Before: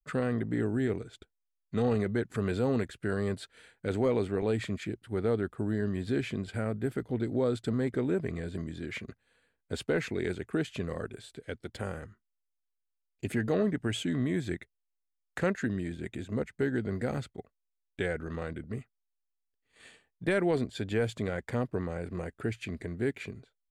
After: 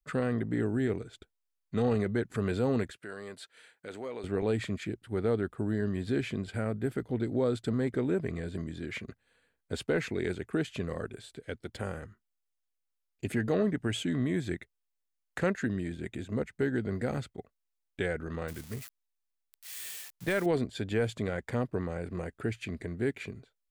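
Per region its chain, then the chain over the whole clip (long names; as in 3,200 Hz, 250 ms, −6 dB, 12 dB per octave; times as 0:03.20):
0:02.92–0:04.24: high-pass filter 650 Hz 6 dB per octave + downward compressor 1.5 to 1, threshold −46 dBFS
0:18.48–0:20.46: spike at every zero crossing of −33 dBFS + parametric band 280 Hz −4.5 dB 1.4 octaves
whole clip: no processing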